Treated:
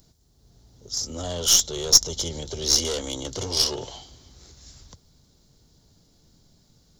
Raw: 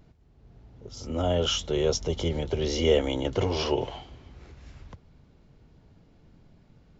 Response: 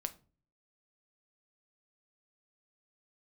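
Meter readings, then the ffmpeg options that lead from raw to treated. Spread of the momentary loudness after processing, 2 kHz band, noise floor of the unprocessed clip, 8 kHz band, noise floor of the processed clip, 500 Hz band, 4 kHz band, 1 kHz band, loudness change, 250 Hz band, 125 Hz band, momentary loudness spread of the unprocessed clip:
14 LU, -3.0 dB, -59 dBFS, no reading, -61 dBFS, -7.0 dB, +9.0 dB, -3.5 dB, +5.5 dB, -6.0 dB, -5.5 dB, 13 LU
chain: -af "asoftclip=type=tanh:threshold=0.0891,aexciter=amount=10.5:drive=5.3:freq=3800,aeval=exprs='0.944*(cos(1*acos(clip(val(0)/0.944,-1,1)))-cos(1*PI/2))+0.0596*(cos(4*acos(clip(val(0)/0.944,-1,1)))-cos(4*PI/2))+0.0376*(cos(7*acos(clip(val(0)/0.944,-1,1)))-cos(7*PI/2))':c=same,volume=0.891"

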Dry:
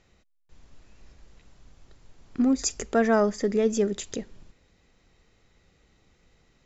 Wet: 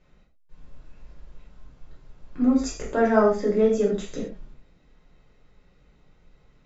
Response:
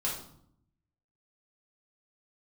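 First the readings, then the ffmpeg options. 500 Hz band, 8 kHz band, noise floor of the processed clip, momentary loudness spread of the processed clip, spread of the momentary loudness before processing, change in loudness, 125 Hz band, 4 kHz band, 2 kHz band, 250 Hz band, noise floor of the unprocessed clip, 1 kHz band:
+3.5 dB, no reading, -60 dBFS, 15 LU, 14 LU, +2.5 dB, +2.0 dB, -4.5 dB, +0.5 dB, +2.0 dB, -65 dBFS, +3.0 dB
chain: -filter_complex "[0:a]lowpass=f=2100:p=1[s0];[1:a]atrim=start_sample=2205,atrim=end_sample=6174[s1];[s0][s1]afir=irnorm=-1:irlink=0,volume=0.794"

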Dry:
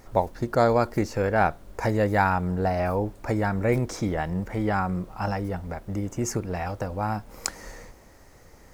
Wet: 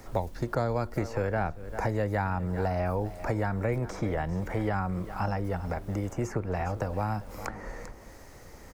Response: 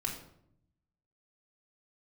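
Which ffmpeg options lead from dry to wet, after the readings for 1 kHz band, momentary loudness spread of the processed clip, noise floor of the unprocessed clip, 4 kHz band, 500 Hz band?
-6.5 dB, 12 LU, -51 dBFS, -8.5 dB, -5.5 dB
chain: -filter_complex "[0:a]aecho=1:1:395:0.106,acrossover=split=130|400|2100[s0][s1][s2][s3];[s0]acompressor=threshold=0.0178:ratio=4[s4];[s1]acompressor=threshold=0.00891:ratio=4[s5];[s2]acompressor=threshold=0.02:ratio=4[s6];[s3]acompressor=threshold=0.002:ratio=4[s7];[s4][s5][s6][s7]amix=inputs=4:normalize=0,volume=1.41"

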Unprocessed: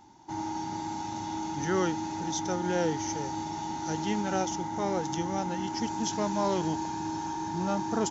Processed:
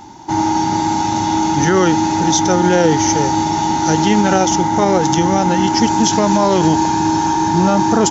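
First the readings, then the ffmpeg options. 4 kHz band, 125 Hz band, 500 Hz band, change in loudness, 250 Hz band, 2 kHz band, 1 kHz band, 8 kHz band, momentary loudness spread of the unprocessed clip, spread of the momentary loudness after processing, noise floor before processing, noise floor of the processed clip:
+17.5 dB, +17.5 dB, +15.5 dB, +17.0 dB, +17.0 dB, +16.5 dB, +17.5 dB, no reading, 7 LU, 4 LU, -36 dBFS, -18 dBFS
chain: -af "alimiter=level_in=11.2:limit=0.891:release=50:level=0:latency=1,volume=0.75"

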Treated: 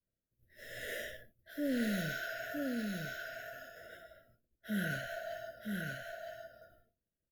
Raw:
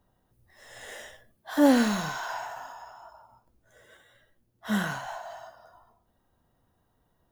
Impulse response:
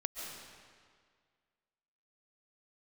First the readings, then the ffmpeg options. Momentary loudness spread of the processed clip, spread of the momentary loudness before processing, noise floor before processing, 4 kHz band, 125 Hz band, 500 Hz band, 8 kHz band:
18 LU, 24 LU, -72 dBFS, -7.0 dB, -3.0 dB, -9.0 dB, -9.5 dB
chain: -af "agate=range=0.0224:threshold=0.002:ratio=3:detection=peak,aemphasis=mode=reproduction:type=50fm,areverse,acompressor=threshold=0.0158:ratio=6,areverse,aexciter=amount=11.6:drive=4.5:freq=11000,asuperstop=centerf=970:order=20:qfactor=1.4,aecho=1:1:963:0.668,volume=1.41"

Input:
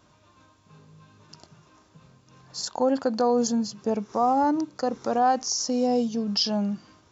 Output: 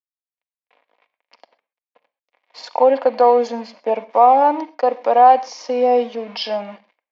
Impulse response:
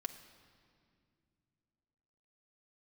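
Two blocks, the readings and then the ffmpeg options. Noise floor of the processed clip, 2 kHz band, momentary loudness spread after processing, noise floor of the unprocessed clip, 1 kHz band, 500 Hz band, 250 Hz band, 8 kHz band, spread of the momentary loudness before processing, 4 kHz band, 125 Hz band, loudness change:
under -85 dBFS, +7.5 dB, 14 LU, -60 dBFS, +11.5 dB, +10.0 dB, -4.0 dB, no reading, 8 LU, -1.5 dB, under -10 dB, +8.5 dB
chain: -filter_complex "[0:a]aeval=exprs='sgn(val(0))*max(abs(val(0))-0.00447,0)':c=same,highpass=f=370:w=0.5412,highpass=f=370:w=1.3066,equalizer=f=400:t=q:w=4:g=-9,equalizer=f=580:t=q:w=4:g=6,equalizer=f=910:t=q:w=4:g=4,equalizer=f=1400:t=q:w=4:g=-7,equalizer=f=2200:t=q:w=4:g=7,lowpass=f=3200:w=0.5412,lowpass=f=3200:w=1.3066,asplit=2[s0][s1];[1:a]atrim=start_sample=2205,atrim=end_sample=6174,highshelf=f=5700:g=12[s2];[s1][s2]afir=irnorm=-1:irlink=0,volume=1.33[s3];[s0][s3]amix=inputs=2:normalize=0,volume=1.41"

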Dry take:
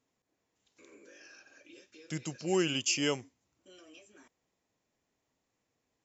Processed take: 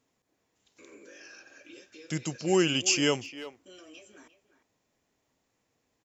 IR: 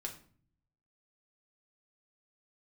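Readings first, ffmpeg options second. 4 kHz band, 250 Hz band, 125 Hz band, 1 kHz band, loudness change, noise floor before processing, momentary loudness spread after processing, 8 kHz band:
+5.0 dB, +5.0 dB, +5.0 dB, +5.0 dB, +5.0 dB, -83 dBFS, 18 LU, no reading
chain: -filter_complex "[0:a]asplit=2[s0][s1];[s1]adelay=350,highpass=300,lowpass=3400,asoftclip=type=hard:threshold=0.0501,volume=0.224[s2];[s0][s2]amix=inputs=2:normalize=0,volume=1.78"

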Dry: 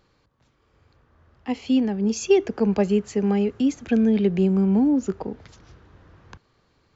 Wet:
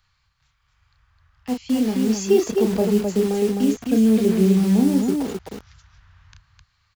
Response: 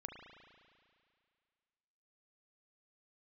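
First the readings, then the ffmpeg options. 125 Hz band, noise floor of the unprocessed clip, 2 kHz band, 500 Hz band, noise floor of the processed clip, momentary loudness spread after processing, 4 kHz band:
+2.5 dB, -65 dBFS, 0.0 dB, +2.5 dB, -68 dBFS, 13 LU, +3.5 dB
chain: -filter_complex "[0:a]acrossover=split=120|1000|3000[s0][s1][s2][s3];[s1]acrusher=bits=5:mix=0:aa=0.000001[s4];[s2]acompressor=threshold=0.00178:ratio=6[s5];[s0][s4][s5][s3]amix=inputs=4:normalize=0,aecho=1:1:32.07|259.5:0.562|0.631"

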